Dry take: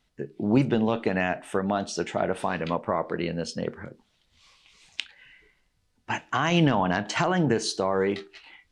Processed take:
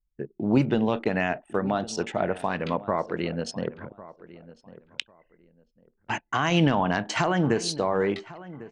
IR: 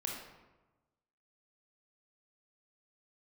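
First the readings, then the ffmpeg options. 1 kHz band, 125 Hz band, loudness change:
0.0 dB, 0.0 dB, 0.0 dB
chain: -filter_complex "[0:a]anlmdn=0.631,asplit=2[link_01][link_02];[link_02]adelay=1100,lowpass=frequency=1900:poles=1,volume=-17.5dB,asplit=2[link_03][link_04];[link_04]adelay=1100,lowpass=frequency=1900:poles=1,volume=0.23[link_05];[link_01][link_03][link_05]amix=inputs=3:normalize=0"

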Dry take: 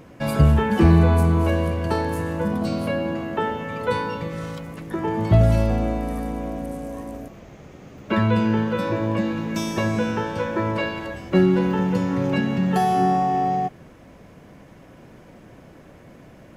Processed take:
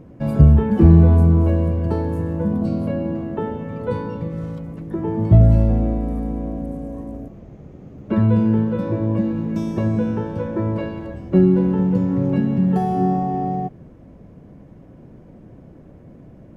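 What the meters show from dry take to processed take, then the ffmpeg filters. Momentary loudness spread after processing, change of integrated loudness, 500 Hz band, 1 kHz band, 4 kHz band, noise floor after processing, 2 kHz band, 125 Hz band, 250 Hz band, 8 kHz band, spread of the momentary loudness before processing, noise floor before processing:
16 LU, +3.0 dB, 0.0 dB, −5.0 dB, below −10 dB, −44 dBFS, −11.0 dB, +5.0 dB, +3.5 dB, below −10 dB, 13 LU, −47 dBFS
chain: -af "tiltshelf=frequency=780:gain=10,volume=-4.5dB"

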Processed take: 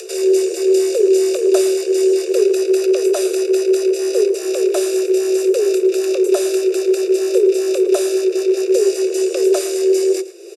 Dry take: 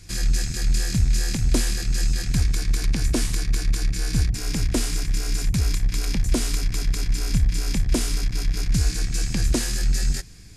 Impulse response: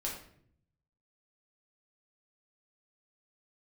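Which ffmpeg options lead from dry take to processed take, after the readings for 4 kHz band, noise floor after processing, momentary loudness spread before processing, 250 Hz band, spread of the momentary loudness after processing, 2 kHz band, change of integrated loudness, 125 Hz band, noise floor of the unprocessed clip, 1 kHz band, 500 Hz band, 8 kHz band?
+1.0 dB, −26 dBFS, 3 LU, +11.5 dB, 3 LU, +1.0 dB, +8.5 dB, below −40 dB, −31 dBFS, +6.0 dB, +26.5 dB, +2.5 dB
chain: -filter_complex "[0:a]aecho=1:1:0.9:0.79,afreqshift=340,acompressor=mode=upward:threshold=-25dB:ratio=2.5,asplit=2[link_01][link_02];[link_02]adelay=110.8,volume=-15dB,highshelf=frequency=4000:gain=-2.49[link_03];[link_01][link_03]amix=inputs=2:normalize=0"

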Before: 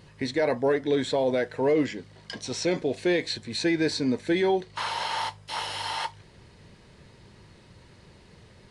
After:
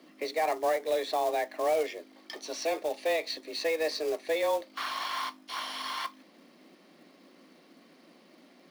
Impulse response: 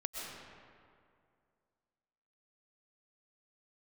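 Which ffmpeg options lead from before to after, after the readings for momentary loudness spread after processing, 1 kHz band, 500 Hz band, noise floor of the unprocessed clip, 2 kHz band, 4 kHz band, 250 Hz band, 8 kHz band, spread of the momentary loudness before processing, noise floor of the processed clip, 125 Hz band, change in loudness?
8 LU, −0.5 dB, −3.5 dB, −54 dBFS, −4.0 dB, −4.5 dB, −16.0 dB, −3.5 dB, 8 LU, −59 dBFS, below −25 dB, −4.5 dB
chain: -filter_complex "[0:a]afreqshift=160,equalizer=frequency=7800:width_type=o:width=0.3:gain=-13,acrossover=split=340[link_01][link_02];[link_01]acompressor=threshold=-43dB:ratio=1.5[link_03];[link_03][link_02]amix=inputs=2:normalize=0,asubboost=boost=3:cutoff=100,acrusher=bits=4:mode=log:mix=0:aa=0.000001,volume=-4dB"

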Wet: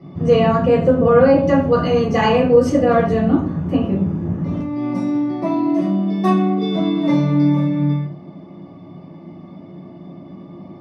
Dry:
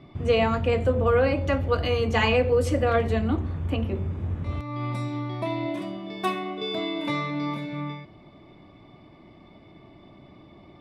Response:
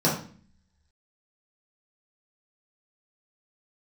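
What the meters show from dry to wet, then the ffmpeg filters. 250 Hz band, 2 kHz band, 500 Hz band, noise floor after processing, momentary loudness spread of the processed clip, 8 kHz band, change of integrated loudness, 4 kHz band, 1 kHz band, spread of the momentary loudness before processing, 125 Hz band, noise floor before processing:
+13.5 dB, +2.0 dB, +9.0 dB, −39 dBFS, 9 LU, can't be measured, +9.0 dB, +1.0 dB, +7.5 dB, 10 LU, +7.0 dB, −51 dBFS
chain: -filter_complex "[1:a]atrim=start_sample=2205,afade=type=out:start_time=0.23:duration=0.01,atrim=end_sample=10584,asetrate=48510,aresample=44100[link_01];[0:a][link_01]afir=irnorm=-1:irlink=0,volume=-8.5dB"

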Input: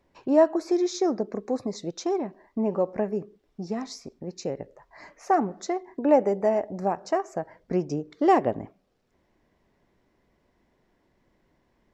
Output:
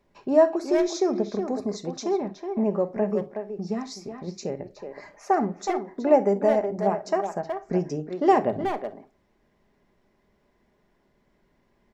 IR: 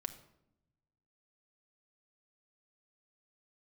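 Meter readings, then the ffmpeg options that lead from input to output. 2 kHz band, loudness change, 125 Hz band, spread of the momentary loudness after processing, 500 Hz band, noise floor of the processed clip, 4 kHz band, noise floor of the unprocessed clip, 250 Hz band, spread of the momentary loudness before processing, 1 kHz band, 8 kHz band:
+1.5 dB, +1.0 dB, +2.5 dB, 14 LU, +2.0 dB, −68 dBFS, +1.0 dB, −70 dBFS, +0.5 dB, 16 LU, +1.0 dB, can't be measured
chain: -filter_complex "[0:a]asplit=2[link_01][link_02];[link_02]adelay=370,highpass=300,lowpass=3400,asoftclip=type=hard:threshold=-17dB,volume=-6dB[link_03];[link_01][link_03]amix=inputs=2:normalize=0[link_04];[1:a]atrim=start_sample=2205,atrim=end_sample=3087[link_05];[link_04][link_05]afir=irnorm=-1:irlink=0,volume=2dB"

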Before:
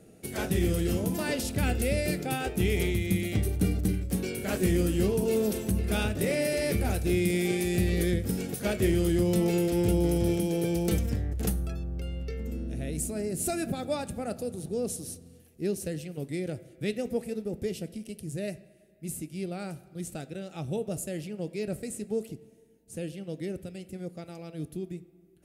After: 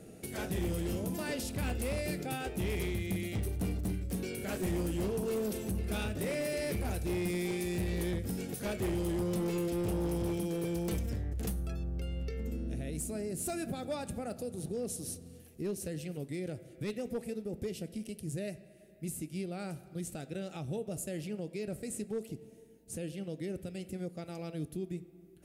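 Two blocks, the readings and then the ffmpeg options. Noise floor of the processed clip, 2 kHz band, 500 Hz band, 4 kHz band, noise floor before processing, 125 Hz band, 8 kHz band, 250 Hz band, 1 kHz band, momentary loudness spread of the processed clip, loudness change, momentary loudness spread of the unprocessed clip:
−55 dBFS, −6.5 dB, −6.5 dB, −6.5 dB, −57 dBFS, −6.5 dB, −5.5 dB, −6.5 dB, −5.0 dB, 8 LU, −6.5 dB, 13 LU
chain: -af "volume=23dB,asoftclip=hard,volume=-23dB,alimiter=level_in=8dB:limit=-24dB:level=0:latency=1:release=387,volume=-8dB,volume=3dB"

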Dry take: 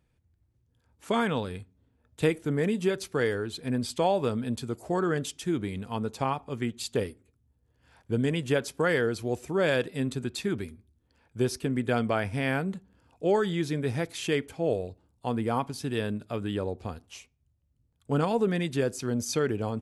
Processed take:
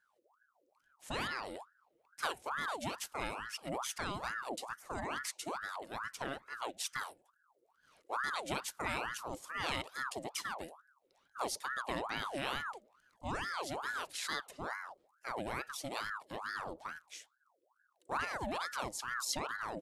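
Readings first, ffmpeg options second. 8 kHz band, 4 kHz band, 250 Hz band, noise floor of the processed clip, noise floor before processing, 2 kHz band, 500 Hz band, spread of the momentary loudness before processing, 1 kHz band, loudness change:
−3.0 dB, −4.0 dB, −18.5 dB, −77 dBFS, −71 dBFS, −4.0 dB, −16.5 dB, 8 LU, −4.5 dB, −10.5 dB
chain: -af "equalizer=frequency=520:width=0.36:gain=-15,aeval=exprs='val(0)*sin(2*PI*1000*n/s+1000*0.6/2.3*sin(2*PI*2.3*n/s))':channel_layout=same,volume=1dB"

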